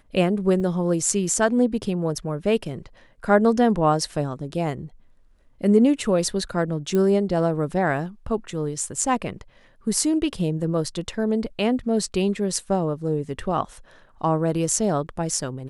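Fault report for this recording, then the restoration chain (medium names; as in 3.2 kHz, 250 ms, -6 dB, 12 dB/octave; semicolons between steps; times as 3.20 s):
0.60 s: dropout 2.5 ms
6.95 s: pop -13 dBFS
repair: de-click; interpolate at 0.60 s, 2.5 ms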